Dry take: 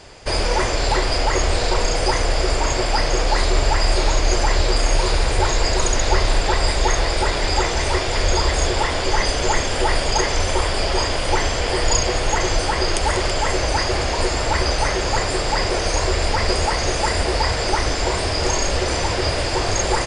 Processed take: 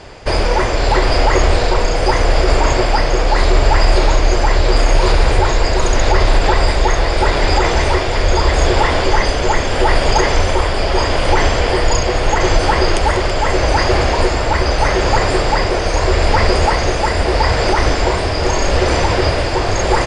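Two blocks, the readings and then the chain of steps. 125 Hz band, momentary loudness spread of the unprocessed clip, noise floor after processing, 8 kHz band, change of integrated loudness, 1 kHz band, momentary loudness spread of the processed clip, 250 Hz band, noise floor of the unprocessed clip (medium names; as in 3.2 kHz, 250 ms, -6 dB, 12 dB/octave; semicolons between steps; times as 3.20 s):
+6.5 dB, 2 LU, -17 dBFS, -2.0 dB, +4.5 dB, +6.0 dB, 2 LU, +6.5 dB, -22 dBFS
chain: low-pass 2.7 kHz 6 dB/octave; tremolo 0.79 Hz, depth 29%; loudness maximiser +9 dB; trim -1 dB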